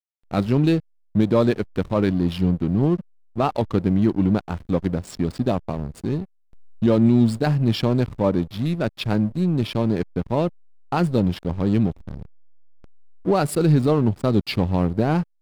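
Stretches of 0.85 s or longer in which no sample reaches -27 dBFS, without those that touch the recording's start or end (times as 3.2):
12.23–13.26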